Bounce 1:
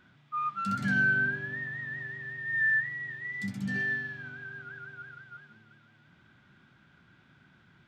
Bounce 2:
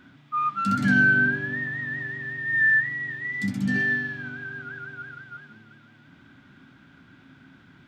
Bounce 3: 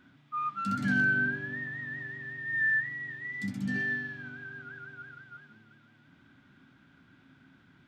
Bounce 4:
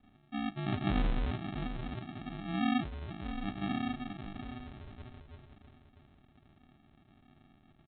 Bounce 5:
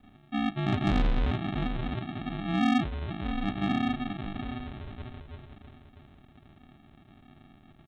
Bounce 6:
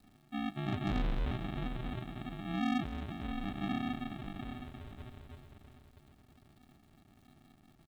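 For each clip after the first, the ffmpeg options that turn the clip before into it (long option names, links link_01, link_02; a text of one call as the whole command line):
ffmpeg -i in.wav -af "equalizer=frequency=270:width_type=o:width=0.29:gain=12.5,volume=6.5dB" out.wav
ffmpeg -i in.wav -af "asoftclip=type=hard:threshold=-11.5dB,volume=-7.5dB" out.wav
ffmpeg -i in.wav -af "aecho=1:1:643|1286|1929:0.282|0.0733|0.0191,aresample=8000,acrusher=samples=16:mix=1:aa=0.000001,aresample=44100,volume=-3dB" out.wav
ffmpeg -i in.wav -af "asoftclip=type=tanh:threshold=-25.5dB,volume=7.5dB" out.wav
ffmpeg -i in.wav -af "acrusher=bits=9:mix=0:aa=0.000001,aecho=1:1:226|452|678|904|1130|1356:0.211|0.127|0.0761|0.0457|0.0274|0.0164,volume=-8dB" out.wav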